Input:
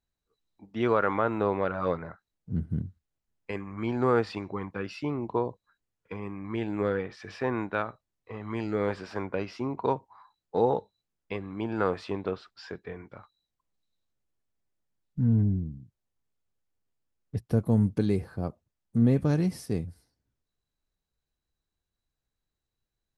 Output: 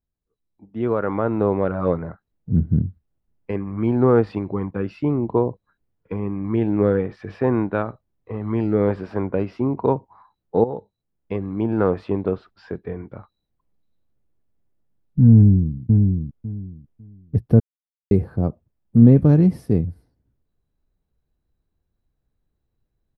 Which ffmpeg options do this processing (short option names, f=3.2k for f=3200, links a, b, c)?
-filter_complex "[0:a]asplit=2[a][b];[b]afade=t=in:st=15.34:d=0.01,afade=t=out:st=15.75:d=0.01,aecho=0:1:550|1100|1650:0.668344|0.133669|0.0267338[c];[a][c]amix=inputs=2:normalize=0,asplit=4[d][e][f][g];[d]atrim=end=10.64,asetpts=PTS-STARTPTS,afade=t=out:st=10.636:d=0.004:c=hsin:silence=0.211349[h];[e]atrim=start=10.64:end=17.6,asetpts=PTS-STARTPTS,afade=t=in:d=0.75:silence=0.211349,afade=t=out:st=6.956:d=0.004:c=hsin[i];[f]atrim=start=17.6:end=18.11,asetpts=PTS-STARTPTS,volume=0[j];[g]atrim=start=18.11,asetpts=PTS-STARTPTS,afade=t=in:d=0.004:c=hsin[k];[h][i][j][k]concat=n=4:v=0:a=1,equalizer=f=6.8k:w=0.91:g=-9.5,dynaudnorm=f=430:g=5:m=10.5dB,tiltshelf=f=810:g=7,volume=-4dB"